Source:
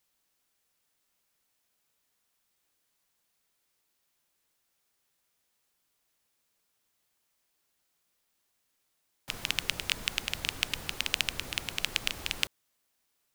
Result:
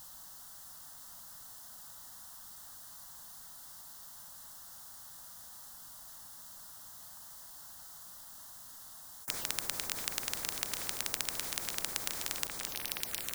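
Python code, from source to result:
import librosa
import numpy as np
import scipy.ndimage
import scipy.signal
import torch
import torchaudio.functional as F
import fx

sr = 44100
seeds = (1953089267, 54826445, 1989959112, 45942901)

y = fx.echo_alternate(x, sr, ms=536, hz=2200.0, feedback_pct=63, wet_db=-10.5)
y = fx.env_phaser(y, sr, low_hz=400.0, high_hz=2800.0, full_db=-38.5)
y = fx.spectral_comp(y, sr, ratio=10.0)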